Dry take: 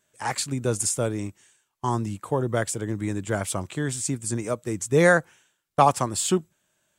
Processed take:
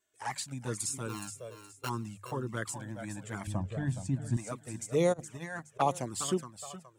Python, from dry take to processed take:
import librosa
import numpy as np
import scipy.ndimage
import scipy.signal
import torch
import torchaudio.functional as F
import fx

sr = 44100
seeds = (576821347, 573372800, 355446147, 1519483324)

p1 = fx.sample_sort(x, sr, block=32, at=(1.08, 1.88), fade=0.02)
p2 = p1 + fx.echo_feedback(p1, sr, ms=419, feedback_pct=28, wet_db=-10, dry=0)
p3 = fx.over_compress(p2, sr, threshold_db=-28.0, ratio=-0.5, at=(5.12, 5.79), fade=0.02)
p4 = fx.low_shelf(p3, sr, hz=130.0, db=-5.5)
p5 = fx.hum_notches(p4, sr, base_hz=50, count=3)
p6 = fx.env_flanger(p5, sr, rest_ms=2.8, full_db=-16.5)
p7 = fx.tilt_eq(p6, sr, slope=-3.5, at=(3.47, 4.37))
y = p7 * 10.0 ** (-6.5 / 20.0)